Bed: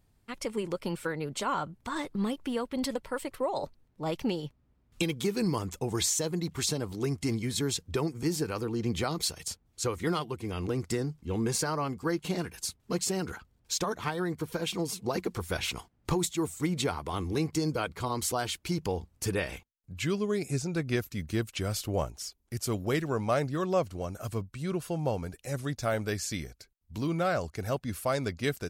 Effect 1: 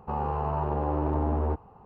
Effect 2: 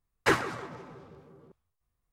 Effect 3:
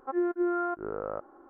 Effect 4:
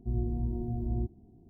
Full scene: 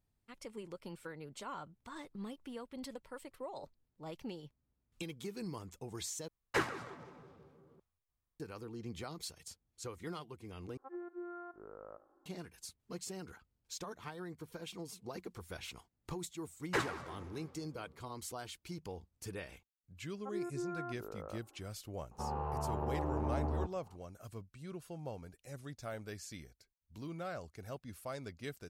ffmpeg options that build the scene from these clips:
-filter_complex "[2:a]asplit=2[a][b];[3:a]asplit=2[c][d];[0:a]volume=-14dB[e];[c]aecho=1:1:75|150|225:0.15|0.0584|0.0228[f];[e]asplit=3[g][h][i];[g]atrim=end=6.284[j];[a]atrim=end=2.12,asetpts=PTS-STARTPTS,volume=-8.5dB[k];[h]atrim=start=8.396:end=10.774[l];[f]atrim=end=1.49,asetpts=PTS-STARTPTS,volume=-17dB[m];[i]atrim=start=12.256[n];[b]atrim=end=2.12,asetpts=PTS-STARTPTS,volume=-9.5dB,afade=t=in:d=0.004:c=hsin,afade=t=out:st=2.116:d=0.004:c=hsin,adelay=16470[o];[d]atrim=end=1.49,asetpts=PTS-STARTPTS,volume=-12.5dB,afade=t=in:d=0.004:c=hsin,afade=t=out:st=1.486:d=0.004:c=hsin,adelay=20180[p];[1:a]atrim=end=1.85,asetpts=PTS-STARTPTS,volume=-9dB,afade=t=in:d=0.004:c=hsin,afade=t=out:st=1.846:d=0.004:c=hsin,adelay=22110[q];[j][k]acrossfade=d=0.004:c1=hsin:c2=hsin[r];[r][l]acrossfade=d=0.004:c1=hsin:c2=hsin[s];[s][m]acrossfade=d=0.004:c1=hsin:c2=hsin[t];[t][n]acrossfade=d=0.004:c1=hsin:c2=hsin[u];[u][o][p][q]amix=inputs=4:normalize=0"

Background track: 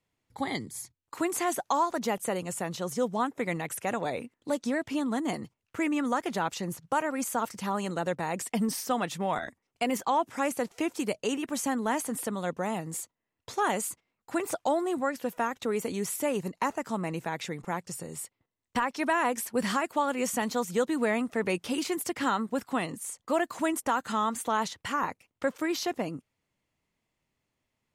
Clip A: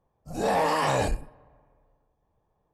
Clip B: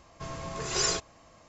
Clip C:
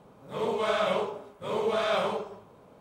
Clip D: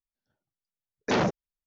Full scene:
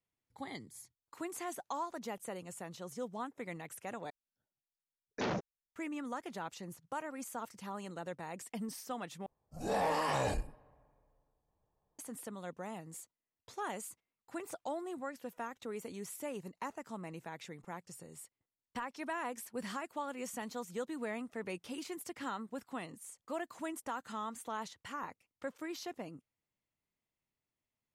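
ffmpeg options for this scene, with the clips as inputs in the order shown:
-filter_complex "[0:a]volume=-12.5dB,asplit=3[a][b][c];[a]atrim=end=4.104[d];[4:a]atrim=end=1.66,asetpts=PTS-STARTPTS,volume=-11dB[e];[b]atrim=start=5.756:end=9.264[f];[1:a]atrim=end=2.73,asetpts=PTS-STARTPTS,volume=-8.5dB[g];[c]atrim=start=11.986[h];[d][e]acrossfade=d=0.004:c1=hsin:c2=hsin[i];[i][f]acrossfade=d=0.004:c1=hsin:c2=hsin[j];[j][g]acrossfade=d=0.004:c1=hsin:c2=hsin[k];[k][h]acrossfade=d=0.004:c1=hsin:c2=hsin"

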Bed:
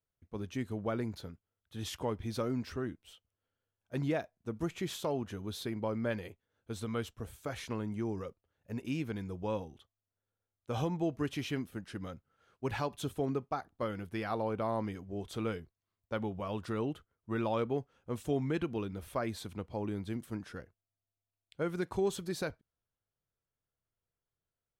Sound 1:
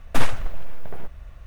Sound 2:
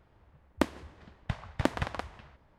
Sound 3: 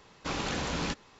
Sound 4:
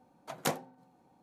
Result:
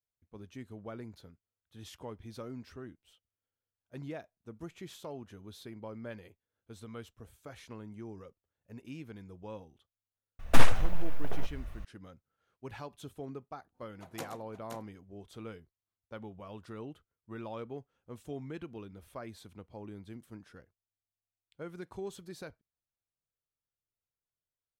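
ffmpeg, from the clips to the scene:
-filter_complex "[0:a]volume=-9dB[a];[4:a]aecho=1:1:124|521:0.282|0.473[b];[1:a]atrim=end=1.46,asetpts=PTS-STARTPTS,volume=-1dB,afade=t=in:d=0.004:c=hsin,afade=t=out:st=1.456:d=0.004:c=hsin,adelay=10390[c];[b]atrim=end=1.22,asetpts=PTS-STARTPTS,volume=-11dB,afade=t=in:d=0.05,afade=t=out:st=1.17:d=0.05,adelay=13730[d];[a][c][d]amix=inputs=3:normalize=0"

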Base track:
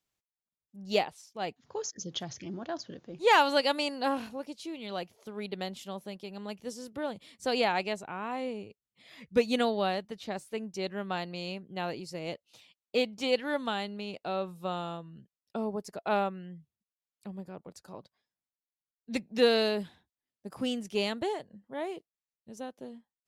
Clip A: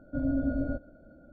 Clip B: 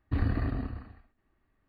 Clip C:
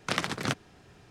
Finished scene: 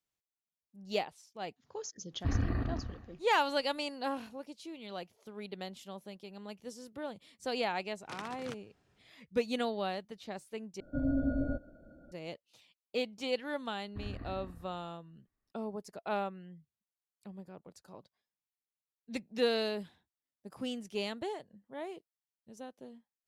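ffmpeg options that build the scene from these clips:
-filter_complex "[2:a]asplit=2[a][b];[0:a]volume=-6dB,asplit=2[c][d];[c]atrim=end=10.804[e];[1:a]atrim=end=1.32,asetpts=PTS-STARTPTS,volume=-2.5dB[f];[d]atrim=start=12.116[g];[a]atrim=end=1.68,asetpts=PTS-STARTPTS,volume=-3dB,afade=t=in:d=0.004:c=hsin,afade=t=out:st=1.676:d=0.004:c=hsin,adelay=2130[h];[3:a]atrim=end=1.1,asetpts=PTS-STARTPTS,volume=-16.5dB,afade=t=in:d=0.004:c=hsin,afade=t=out:st=1.096:d=0.004:c=hsin,adelay=8010[i];[b]atrim=end=1.68,asetpts=PTS-STARTPTS,volume=-14.5dB,afade=t=in:d=0.004:c=hsin,afade=t=out:st=1.676:d=0.004:c=hsin,adelay=13840[j];[e][f]acrossfade=d=0.004:c1=hsin:c2=hsin[k];[k][g]acrossfade=d=0.004:c1=hsin:c2=hsin[l];[l][h][i][j]amix=inputs=4:normalize=0"

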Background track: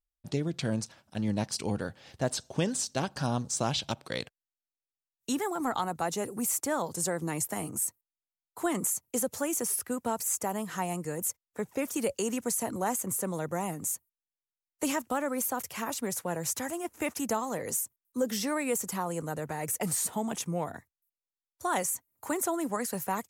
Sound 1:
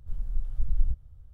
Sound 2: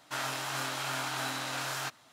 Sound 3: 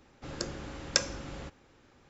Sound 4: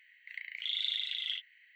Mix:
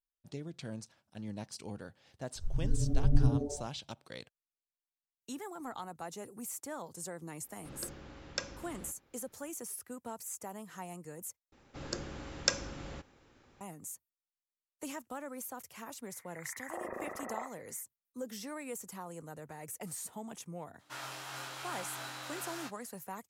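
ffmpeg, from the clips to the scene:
-filter_complex "[3:a]asplit=2[a][b];[0:a]volume=-12dB[c];[1:a]asplit=7[d][e][f][g][h][i][j];[e]adelay=85,afreqshift=-150,volume=-6.5dB[k];[f]adelay=170,afreqshift=-300,volume=-13.1dB[l];[g]adelay=255,afreqshift=-450,volume=-19.6dB[m];[h]adelay=340,afreqshift=-600,volume=-26.2dB[n];[i]adelay=425,afreqshift=-750,volume=-32.7dB[o];[j]adelay=510,afreqshift=-900,volume=-39.3dB[p];[d][k][l][m][n][o][p]amix=inputs=7:normalize=0[q];[a]lowpass=5.9k[r];[4:a]lowpass=f=3.4k:t=q:w=0.5098,lowpass=f=3.4k:t=q:w=0.6013,lowpass=f=3.4k:t=q:w=0.9,lowpass=f=3.4k:t=q:w=2.563,afreqshift=-4000[s];[2:a]asplit=2[t][u];[u]adelay=17,volume=-4.5dB[v];[t][v]amix=inputs=2:normalize=0[w];[c]asplit=2[x][y];[x]atrim=end=11.524[z];[b]atrim=end=2.09,asetpts=PTS-STARTPTS,volume=-2.5dB[aa];[y]atrim=start=13.606[ab];[q]atrim=end=1.33,asetpts=PTS-STARTPTS,volume=-3dB,afade=t=in:d=0.004:c=hsin,afade=t=out:st=1.326:d=0.004:c=hsin,adelay=2350[ac];[r]atrim=end=2.09,asetpts=PTS-STARTPTS,volume=-8.5dB,afade=t=in:d=0.004:c=hsin,afade=t=out:st=2.086:d=0.004:c=hsin,adelay=7420[ad];[s]atrim=end=1.75,asetpts=PTS-STARTPTS,volume=-3.5dB,afade=t=in:d=0.004:c=hsin,afade=t=out:st=1.746:d=0.004:c=hsin,adelay=16080[ae];[w]atrim=end=2.12,asetpts=PTS-STARTPTS,volume=-10dB,afade=t=in:d=0.004:c=hsin,afade=t=out:st=2.116:d=0.004:c=hsin,adelay=20790[af];[z][aa]acrossfade=d=0.004:c1=hsin:c2=hsin[ag];[ag][ab]acrossfade=d=0.004:c1=hsin:c2=hsin[ah];[ah][ac][ad][ae][af]amix=inputs=5:normalize=0"

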